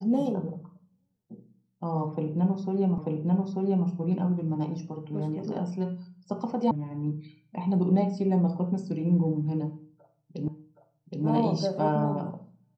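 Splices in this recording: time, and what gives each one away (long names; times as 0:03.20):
0:02.98: the same again, the last 0.89 s
0:06.71: cut off before it has died away
0:10.48: the same again, the last 0.77 s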